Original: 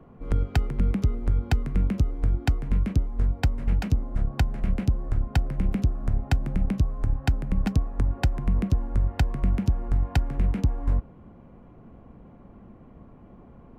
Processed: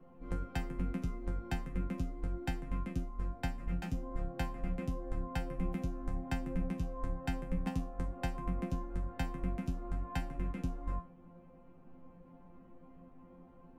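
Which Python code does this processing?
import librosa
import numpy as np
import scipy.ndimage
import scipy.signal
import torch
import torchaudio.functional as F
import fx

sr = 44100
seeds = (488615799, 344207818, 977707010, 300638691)

y = fx.dynamic_eq(x, sr, hz=4400.0, q=1.4, threshold_db=-58.0, ratio=4.0, max_db=-6)
y = fx.resonator_bank(y, sr, root=53, chord='fifth', decay_s=0.28)
y = y * librosa.db_to_amplitude(6.5)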